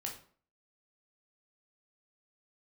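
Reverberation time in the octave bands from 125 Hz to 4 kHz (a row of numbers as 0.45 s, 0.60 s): 0.45 s, 0.50 s, 0.50 s, 0.45 s, 0.40 s, 0.35 s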